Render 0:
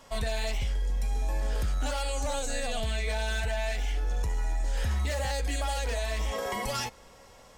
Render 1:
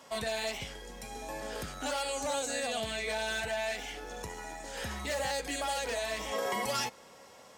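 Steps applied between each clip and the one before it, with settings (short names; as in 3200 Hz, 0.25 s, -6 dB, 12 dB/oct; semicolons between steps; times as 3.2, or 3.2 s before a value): HPF 170 Hz 12 dB/oct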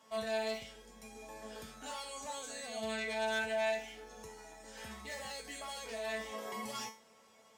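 resonator 220 Hz, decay 0.35 s, harmonics all, mix 90%; gain +3.5 dB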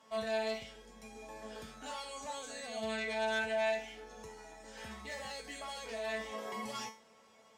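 high shelf 9400 Hz -10.5 dB; gain +1 dB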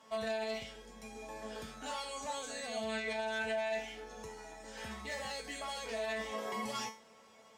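limiter -30.5 dBFS, peak gain reduction 8.5 dB; gain +2.5 dB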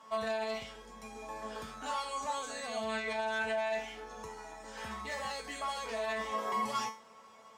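bell 1100 Hz +9 dB 0.69 oct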